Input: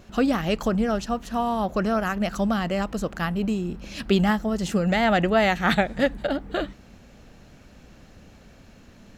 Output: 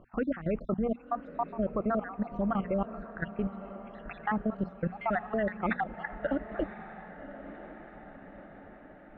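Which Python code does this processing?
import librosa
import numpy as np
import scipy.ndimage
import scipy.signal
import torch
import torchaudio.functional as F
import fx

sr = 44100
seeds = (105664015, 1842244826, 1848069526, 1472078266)

p1 = fx.spec_dropout(x, sr, seeds[0], share_pct=61)
p2 = scipy.signal.sosfilt(scipy.signal.butter(4, 2000.0, 'lowpass', fs=sr, output='sos'), p1)
p3 = fx.peak_eq(p2, sr, hz=67.0, db=-9.5, octaves=0.46)
p4 = fx.hum_notches(p3, sr, base_hz=60, count=4)
p5 = fx.level_steps(p4, sr, step_db=14)
y = p5 + fx.echo_diffused(p5, sr, ms=1054, feedback_pct=58, wet_db=-13, dry=0)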